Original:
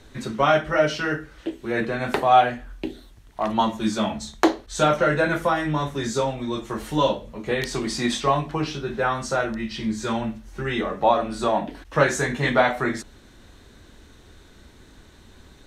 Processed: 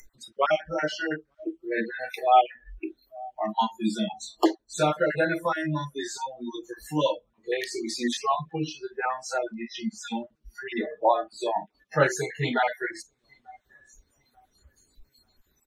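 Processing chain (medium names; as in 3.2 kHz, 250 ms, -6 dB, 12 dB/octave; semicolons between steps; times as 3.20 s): random holes in the spectrogram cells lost 27%; on a send: feedback delay 888 ms, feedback 54%, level -24 dB; on the sum: upward compressor, threshold -27 dBFS; spectral noise reduction 29 dB; trim -2.5 dB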